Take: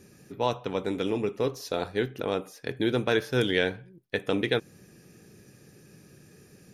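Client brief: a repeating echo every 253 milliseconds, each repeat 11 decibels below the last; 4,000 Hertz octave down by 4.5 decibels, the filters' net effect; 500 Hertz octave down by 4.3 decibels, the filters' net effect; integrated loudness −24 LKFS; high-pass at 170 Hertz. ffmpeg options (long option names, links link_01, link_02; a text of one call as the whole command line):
ffmpeg -i in.wav -af "highpass=170,equalizer=frequency=500:width_type=o:gain=-5,equalizer=frequency=4000:width_type=o:gain=-5.5,aecho=1:1:253|506|759:0.282|0.0789|0.0221,volume=8dB" out.wav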